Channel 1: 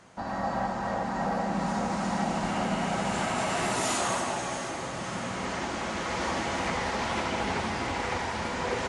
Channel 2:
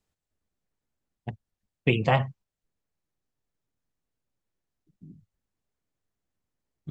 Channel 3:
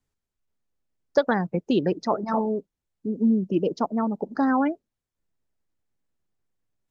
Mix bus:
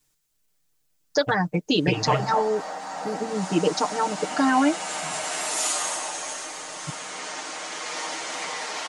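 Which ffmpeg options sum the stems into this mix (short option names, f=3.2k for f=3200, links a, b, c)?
-filter_complex "[0:a]highpass=430,adelay=1750,volume=-4.5dB[a];[1:a]acompressor=threshold=-29dB:ratio=2,volume=-1.5dB[b];[2:a]tiltshelf=f=970:g=-4,alimiter=limit=-16dB:level=0:latency=1:release=27,volume=2dB[c];[a][b][c]amix=inputs=3:normalize=0,highshelf=f=3.8k:g=11,aecho=1:1:6.6:0.93"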